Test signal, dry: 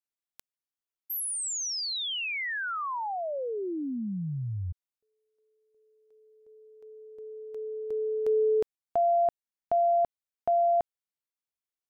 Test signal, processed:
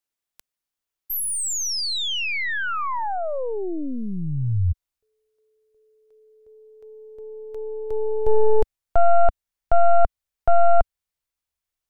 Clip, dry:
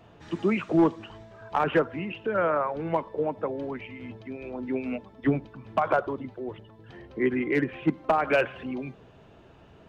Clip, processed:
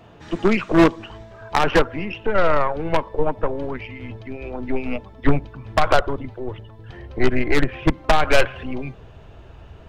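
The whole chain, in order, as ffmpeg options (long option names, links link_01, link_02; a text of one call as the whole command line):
ffmpeg -i in.wav -af "aeval=exprs='0.2*(cos(1*acos(clip(val(0)/0.2,-1,1)))-cos(1*PI/2))+0.0891*(cos(2*acos(clip(val(0)/0.2,-1,1)))-cos(2*PI/2))+0.0794*(cos(4*acos(clip(val(0)/0.2,-1,1)))-cos(4*PI/2))+0.00178*(cos(5*acos(clip(val(0)/0.2,-1,1)))-cos(5*PI/2))+0.0141*(cos(6*acos(clip(val(0)/0.2,-1,1)))-cos(6*PI/2))':channel_layout=same,asubboost=boost=6:cutoff=80,volume=6dB" out.wav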